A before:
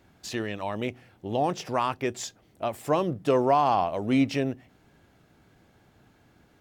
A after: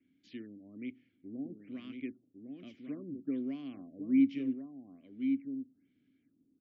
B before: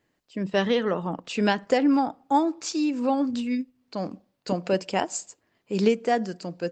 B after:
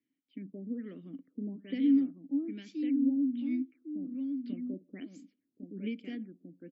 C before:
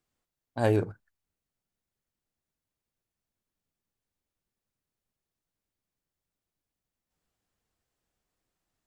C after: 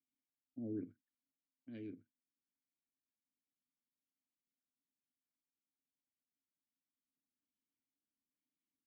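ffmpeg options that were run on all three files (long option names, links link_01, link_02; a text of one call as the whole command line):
ffmpeg -i in.wav -filter_complex "[0:a]acrossover=split=310|1300[link_01][link_02][link_03];[link_01]acontrast=34[link_04];[link_04][link_02][link_03]amix=inputs=3:normalize=0,asplit=3[link_05][link_06][link_07];[link_05]bandpass=frequency=270:width_type=q:width=8,volume=0dB[link_08];[link_06]bandpass=frequency=2290:width_type=q:width=8,volume=-6dB[link_09];[link_07]bandpass=frequency=3010:width_type=q:width=8,volume=-9dB[link_10];[link_08][link_09][link_10]amix=inputs=3:normalize=0,aecho=1:1:1104:0.501,afftfilt=real='re*lt(b*sr/1024,870*pow(7900/870,0.5+0.5*sin(2*PI*1.2*pts/sr)))':imag='im*lt(b*sr/1024,870*pow(7900/870,0.5+0.5*sin(2*PI*1.2*pts/sr)))':win_size=1024:overlap=0.75,volume=-5.5dB" out.wav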